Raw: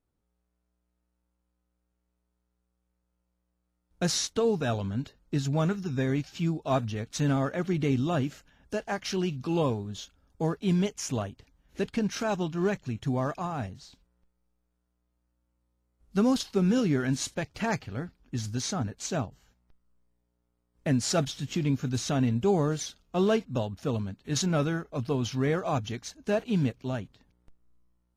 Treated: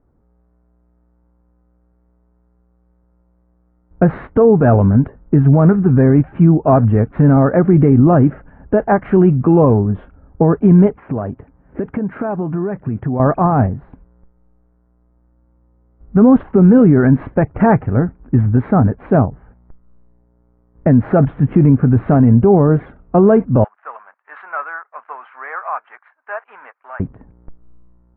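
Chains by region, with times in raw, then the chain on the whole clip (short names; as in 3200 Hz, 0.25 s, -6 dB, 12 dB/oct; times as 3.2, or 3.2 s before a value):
10.95–13.2 HPF 120 Hz 6 dB/oct + compressor 12:1, threshold -36 dBFS
23.64–27 G.711 law mismatch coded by A + HPF 1100 Hz 24 dB/oct + high shelf 4600 Hz -9.5 dB
whole clip: Bessel low-pass 1000 Hz, order 8; maximiser +22 dB; gain -1 dB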